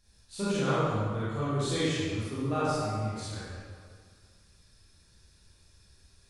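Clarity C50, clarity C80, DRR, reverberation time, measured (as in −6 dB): −6.0 dB, −2.5 dB, −11.0 dB, 1.9 s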